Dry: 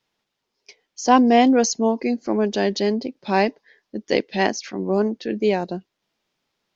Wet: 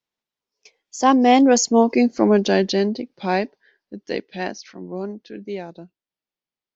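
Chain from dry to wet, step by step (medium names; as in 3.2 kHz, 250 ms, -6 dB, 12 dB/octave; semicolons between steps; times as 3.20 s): Doppler pass-by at 2.07 s, 17 m/s, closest 8.8 m; spectral noise reduction 6 dB; trim +6 dB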